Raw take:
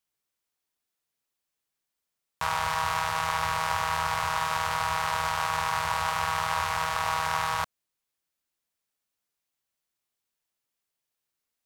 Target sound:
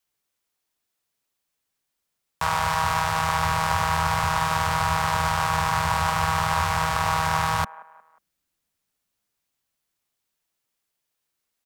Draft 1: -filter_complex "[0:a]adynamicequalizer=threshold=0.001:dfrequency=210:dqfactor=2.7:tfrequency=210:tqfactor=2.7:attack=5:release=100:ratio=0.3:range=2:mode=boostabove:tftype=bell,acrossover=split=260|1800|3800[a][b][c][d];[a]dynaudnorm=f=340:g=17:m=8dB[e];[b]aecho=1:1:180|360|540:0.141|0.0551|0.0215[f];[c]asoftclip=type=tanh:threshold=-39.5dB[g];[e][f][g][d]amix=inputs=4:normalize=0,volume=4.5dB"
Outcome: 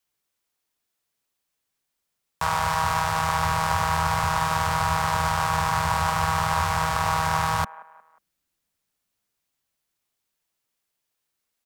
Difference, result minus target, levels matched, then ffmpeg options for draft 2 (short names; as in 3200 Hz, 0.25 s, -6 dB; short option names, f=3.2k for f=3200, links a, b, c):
soft clip: distortion +7 dB
-filter_complex "[0:a]adynamicequalizer=threshold=0.001:dfrequency=210:dqfactor=2.7:tfrequency=210:tqfactor=2.7:attack=5:release=100:ratio=0.3:range=2:mode=boostabove:tftype=bell,acrossover=split=260|1800|3800[a][b][c][d];[a]dynaudnorm=f=340:g=17:m=8dB[e];[b]aecho=1:1:180|360|540:0.141|0.0551|0.0215[f];[c]asoftclip=type=tanh:threshold=-32dB[g];[e][f][g][d]amix=inputs=4:normalize=0,volume=4.5dB"